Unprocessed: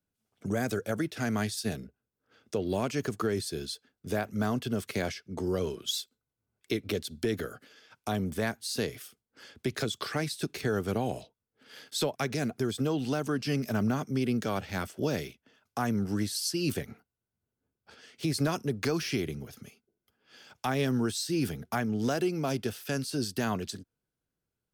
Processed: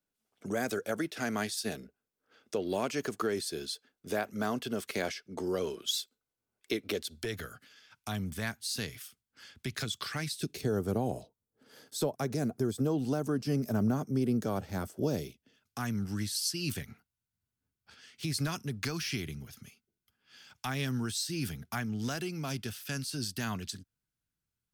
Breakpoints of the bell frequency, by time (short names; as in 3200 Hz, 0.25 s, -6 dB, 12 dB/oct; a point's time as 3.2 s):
bell -12 dB 1.9 oct
6.9 s 95 Hz
7.52 s 450 Hz
10.2 s 450 Hz
10.8 s 2600 Hz
15.01 s 2600 Hz
15.89 s 480 Hz